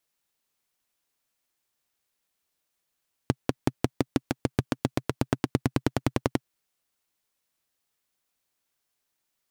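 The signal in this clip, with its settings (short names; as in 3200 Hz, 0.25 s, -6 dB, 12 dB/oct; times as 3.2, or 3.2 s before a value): single-cylinder engine model, changing speed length 3.11 s, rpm 600, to 1300, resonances 130/260 Hz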